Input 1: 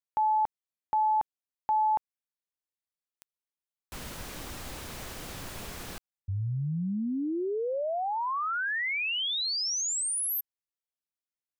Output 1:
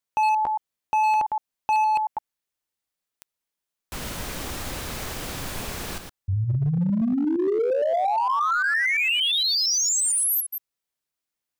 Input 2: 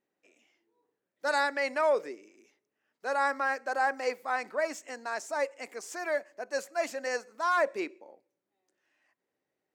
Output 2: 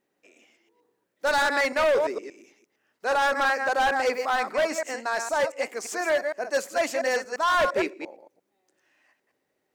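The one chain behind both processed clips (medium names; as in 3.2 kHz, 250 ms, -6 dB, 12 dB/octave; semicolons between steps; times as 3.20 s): chunks repeated in reverse 115 ms, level -7 dB; overload inside the chain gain 26 dB; trim +7.5 dB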